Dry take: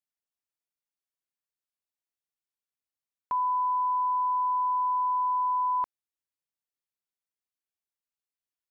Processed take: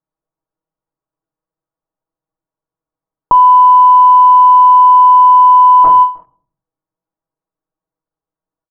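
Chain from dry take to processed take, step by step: notch 710 Hz, Q 16; sample leveller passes 3; on a send at -6 dB: reverb RT60 0.45 s, pre-delay 6 ms; on the sum: vocal rider; 3.39–4.78 notches 60/120/180/240/300/360/420/480/540 Hz; echo 0.313 s -17 dB; in parallel at -5 dB: fuzz box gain 51 dB, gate -53 dBFS; on the sum: LPF 1100 Hz 24 dB/oct; comb 6.3 ms, depth 65%; maximiser +21.5 dB; ending taper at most 190 dB/s; gain -1 dB

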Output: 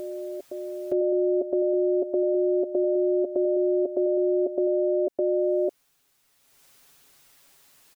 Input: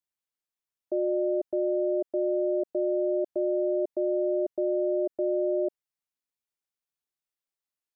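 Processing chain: upward compressor, threshold -43 dBFS; comb 7.3 ms; reverse echo 1.014 s -10.5 dB; gain +6 dB

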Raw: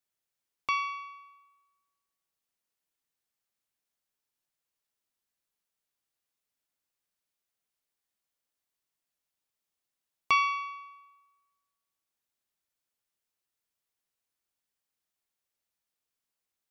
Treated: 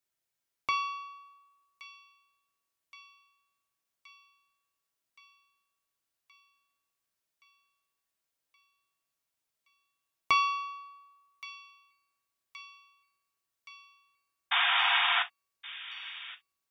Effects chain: painted sound noise, 14.51–15.23, 690–3700 Hz -27 dBFS; thin delay 1.122 s, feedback 69%, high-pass 2100 Hz, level -14 dB; non-linear reverb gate 80 ms falling, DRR 5.5 dB

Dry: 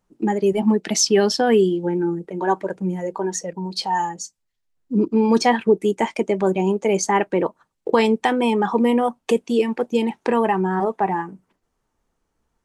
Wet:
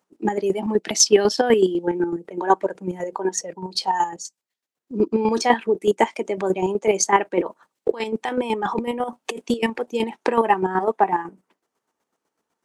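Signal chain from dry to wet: HPF 280 Hz 12 dB/oct; 7.42–9.7 negative-ratio compressor -25 dBFS, ratio -1; chopper 8 Hz, depth 60%, duty 30%; gain +4.5 dB

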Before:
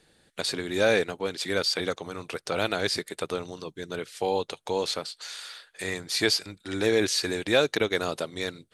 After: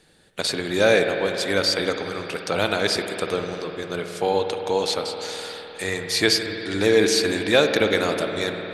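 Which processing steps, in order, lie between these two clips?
spring tank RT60 3.8 s, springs 51 ms, chirp 50 ms, DRR 4.5 dB; gain +4.5 dB

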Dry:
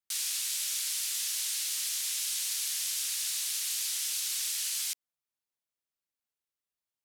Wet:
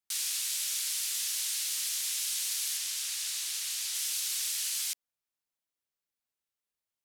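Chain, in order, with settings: 2.77–3.95 high shelf 10000 Hz -6 dB

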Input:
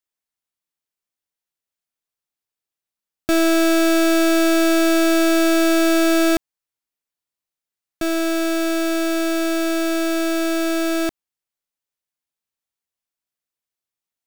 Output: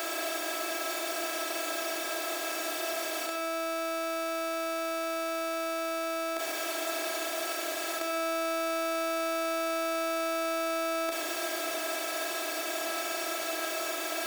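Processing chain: per-bin compression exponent 0.2; HPF 440 Hz 24 dB/oct; negative-ratio compressor -26 dBFS, ratio -0.5; Schroeder reverb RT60 0.68 s, combs from 29 ms, DRR 4.5 dB; gain -4.5 dB

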